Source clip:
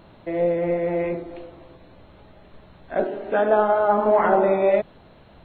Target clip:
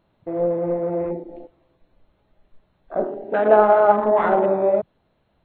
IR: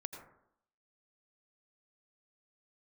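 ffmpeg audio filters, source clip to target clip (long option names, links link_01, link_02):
-filter_complex "[0:a]asettb=1/sr,asplit=3[link_01][link_02][link_03];[link_01]atrim=end=3.454[link_04];[link_02]atrim=start=3.45:end=3.92,asetpts=PTS-STARTPTS,afade=type=in:duration=0.004:curve=qsin,afade=type=out:start_time=0.466:duration=0.004:curve=qsin,equalizer=frequency=580:width=0.32:gain=5[link_05];[link_03]atrim=start=3.916[link_06];[link_04][link_05]acrossfade=duration=0.004:curve1=hsin:curve2=qsin[link_07];[link_07][link_06]acrossfade=duration=0.004:curve1=qsin:curve2=hsin,afwtdn=0.0355"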